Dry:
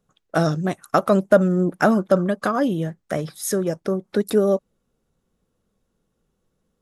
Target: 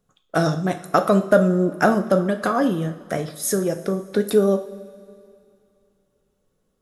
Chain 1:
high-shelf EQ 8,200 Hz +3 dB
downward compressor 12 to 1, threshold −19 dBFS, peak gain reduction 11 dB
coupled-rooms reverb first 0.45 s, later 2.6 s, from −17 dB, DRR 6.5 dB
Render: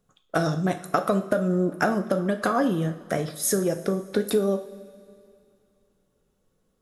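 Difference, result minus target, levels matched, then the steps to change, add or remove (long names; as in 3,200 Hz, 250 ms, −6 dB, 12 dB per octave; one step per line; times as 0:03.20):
downward compressor: peak gain reduction +11 dB
remove: downward compressor 12 to 1, threshold −19 dBFS, peak gain reduction 11 dB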